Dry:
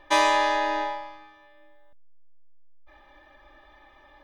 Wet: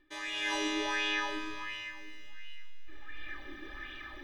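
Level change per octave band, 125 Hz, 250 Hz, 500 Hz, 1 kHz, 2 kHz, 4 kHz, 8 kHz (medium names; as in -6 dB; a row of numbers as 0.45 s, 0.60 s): no reading, -2.0 dB, -13.0 dB, -15.0 dB, -4.0 dB, -3.0 dB, -5.5 dB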